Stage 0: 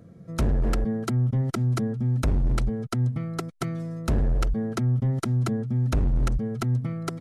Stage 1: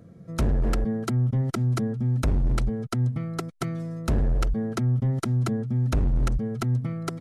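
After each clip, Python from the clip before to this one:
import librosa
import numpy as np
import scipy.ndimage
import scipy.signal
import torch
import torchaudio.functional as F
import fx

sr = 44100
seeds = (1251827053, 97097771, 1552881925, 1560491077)

y = x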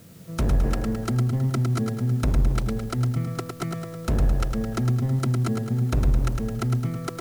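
y = fx.dmg_noise_colour(x, sr, seeds[0], colour='white', level_db=-56.0)
y = fx.echo_feedback(y, sr, ms=107, feedback_pct=53, wet_db=-5.0)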